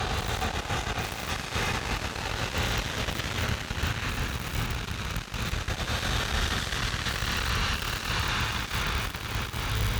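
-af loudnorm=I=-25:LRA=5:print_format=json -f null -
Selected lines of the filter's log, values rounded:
"input_i" : "-29.5",
"input_tp" : "-13.4",
"input_lra" : "2.1",
"input_thresh" : "-39.5",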